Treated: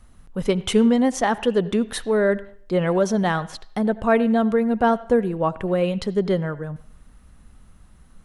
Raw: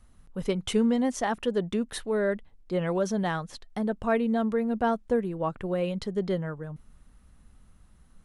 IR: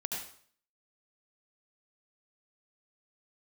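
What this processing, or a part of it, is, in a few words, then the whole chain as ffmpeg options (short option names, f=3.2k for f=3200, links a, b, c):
filtered reverb send: -filter_complex "[0:a]asplit=2[a][b];[b]highpass=f=370:p=1,lowpass=3.6k[c];[1:a]atrim=start_sample=2205[d];[c][d]afir=irnorm=-1:irlink=0,volume=-16dB[e];[a][e]amix=inputs=2:normalize=0,asettb=1/sr,asplit=3[f][g][h];[f]atrim=end=3.924[i];[g]atrim=start=3.92:end=4.42,asetpts=PTS-STARTPTS,afade=t=in:d=0.004:c=qsin,afade=t=out:st=0.496:d=0.004:c=qsin,bandreject=f=5.6k:w=9.3[j];[h]atrim=start=4.416[k];[i][j]acrossfade=d=0.004:c1=hsin:c2=qsin[l];[l][k]acrossfade=d=0.004:c1=qsin:c2=hsin,volume=6.5dB"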